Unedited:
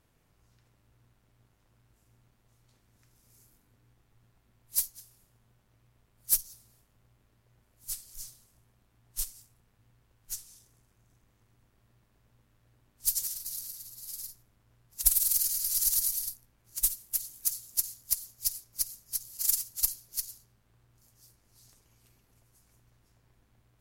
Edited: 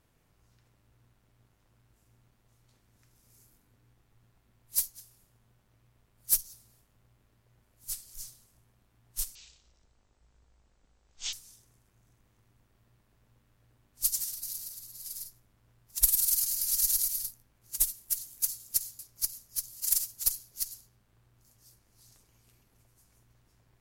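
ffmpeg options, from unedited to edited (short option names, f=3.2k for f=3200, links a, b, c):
-filter_complex "[0:a]asplit=4[a][b][c][d];[a]atrim=end=9.354[e];[b]atrim=start=9.35:end=10.36,asetpts=PTS-STARTPTS,asetrate=22491,aresample=44100,atrim=end_sample=87335,asetpts=PTS-STARTPTS[f];[c]atrim=start=10.356:end=18.022[g];[d]atrim=start=18.558[h];[e][f]acrossfade=d=0.004:c1=hsin:c2=hsin[i];[i][g]acrossfade=d=0.004:c1=hsin:c2=hsin[j];[j][h]acrossfade=d=0.004:c1=hsin:c2=hsin"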